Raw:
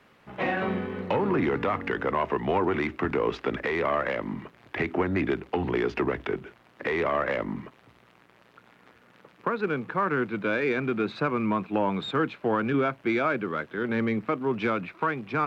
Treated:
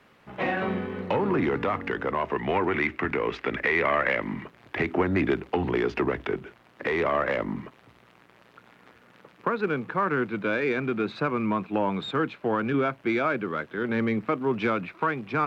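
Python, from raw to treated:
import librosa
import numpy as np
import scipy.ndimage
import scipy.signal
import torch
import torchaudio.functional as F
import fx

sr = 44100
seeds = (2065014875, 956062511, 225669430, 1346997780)

y = fx.peak_eq(x, sr, hz=2100.0, db=8.0, octaves=0.9, at=(2.35, 4.44))
y = fx.rider(y, sr, range_db=10, speed_s=2.0)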